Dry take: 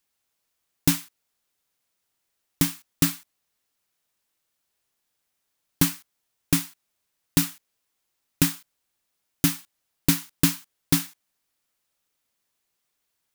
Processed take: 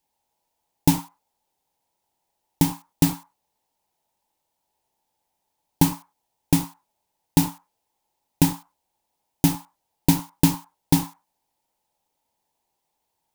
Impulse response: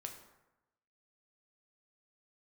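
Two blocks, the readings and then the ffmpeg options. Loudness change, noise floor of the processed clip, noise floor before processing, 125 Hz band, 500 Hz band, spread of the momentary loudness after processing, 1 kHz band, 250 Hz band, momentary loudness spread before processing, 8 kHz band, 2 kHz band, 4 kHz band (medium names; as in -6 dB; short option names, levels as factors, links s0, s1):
+1.5 dB, -79 dBFS, -78 dBFS, +4.5 dB, +5.0 dB, 13 LU, +9.0 dB, +4.5 dB, 14 LU, -2.0 dB, -4.0 dB, -2.5 dB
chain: -filter_complex "[0:a]asplit=2[s0][s1];[s1]lowpass=f=890:t=q:w=9.9[s2];[1:a]atrim=start_sample=2205,afade=t=out:st=0.16:d=0.01,atrim=end_sample=7497[s3];[s2][s3]afir=irnorm=-1:irlink=0,volume=1.5[s4];[s0][s4]amix=inputs=2:normalize=0,volume=0.794"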